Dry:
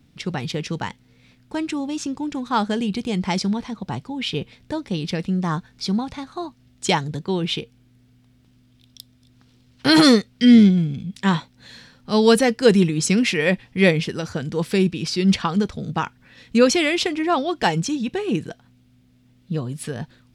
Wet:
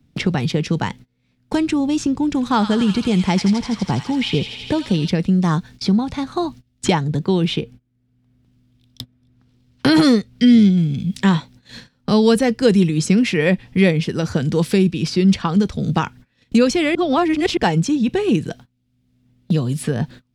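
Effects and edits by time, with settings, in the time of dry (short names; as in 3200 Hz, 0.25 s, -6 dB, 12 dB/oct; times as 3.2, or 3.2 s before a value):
2.33–5.08 thin delay 82 ms, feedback 72%, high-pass 1700 Hz, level -5 dB
16.95–17.57 reverse
whole clip: low shelf 390 Hz +7 dB; gate -40 dBFS, range -28 dB; three-band squash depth 70%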